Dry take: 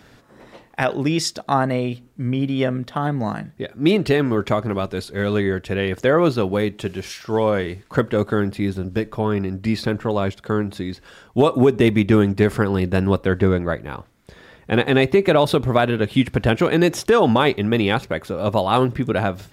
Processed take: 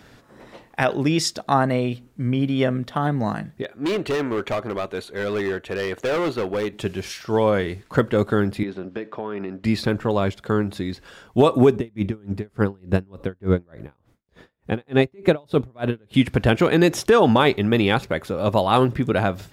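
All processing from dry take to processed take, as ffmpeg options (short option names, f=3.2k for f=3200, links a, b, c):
-filter_complex "[0:a]asettb=1/sr,asplit=3[a][b][c];[a]atrim=end=3.624[d];[b]atrim=start=3.62:end=6.73,asetpts=PTS-STARTPTS,afade=t=in:d=0.004:c=qsin,afade=t=out:st=3.106:d=0.004:c=qsin,asuperstop=centerf=5100:order=4:qfactor=7,bass=f=250:g=-11,treble=f=4k:g=-6,asoftclip=type=hard:threshold=-19.5dB[e];[c]atrim=start=6.726[f];[d][e]acrossfade=d=0.004:c1=hsin:c2=qsin[g];[g][f]acrossfade=d=0.004:c1=qsin:c2=hsin,asettb=1/sr,asplit=3[h][i][j];[h]atrim=end=8.634[k];[i]atrim=start=8.63:end=9.64,asetpts=PTS-STARTPTS,afade=t=in:d=0.004:c=qsin,afade=t=out:st=1.006:d=0.004:c=qsin,highpass=270,lowpass=3.2k,acompressor=threshold=-24dB:ratio=6:attack=3.2:release=140:knee=1:detection=peak[l];[j]atrim=start=9.636[m];[k][l]acrossfade=d=0.004:c1=hsin:c2=qsin[n];[n][m]acrossfade=d=0.004:c1=qsin:c2=hsin,asettb=1/sr,asplit=3[o][p][q];[o]atrim=end=11.764[r];[p]atrim=start=11.76:end=16.14,asetpts=PTS-STARTPTS,afade=t=in:d=0.004:c=qsin,afade=t=out:st=4.376:d=0.004:c=qsin,tiltshelf=f=720:g=3,aeval=exprs='val(0)*pow(10,-37*(0.5-0.5*cos(2*PI*3.4*n/s))/20)':c=same[s];[q]atrim=start=16.136[t];[r][s]acrossfade=d=0.004:c1=hsin:c2=qsin[u];[u][t]acrossfade=d=0.004:c1=qsin:c2=hsin"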